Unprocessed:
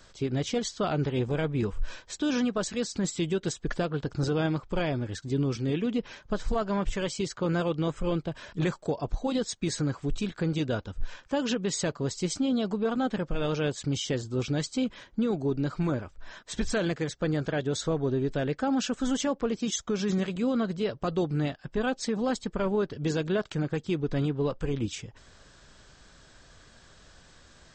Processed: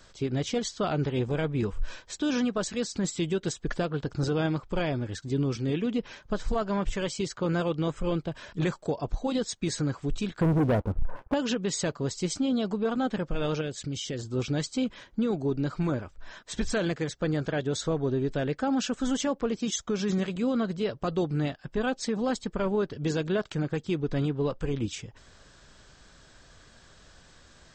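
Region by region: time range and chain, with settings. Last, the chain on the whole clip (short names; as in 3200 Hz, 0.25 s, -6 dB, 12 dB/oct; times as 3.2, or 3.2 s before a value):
10.41–11.34 switching spikes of -34 dBFS + LPF 1000 Hz 24 dB/oct + sample leveller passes 3
13.61–14.19 bell 960 Hz -9.5 dB 0.57 oct + compressor 2:1, threshold -32 dBFS
whole clip: dry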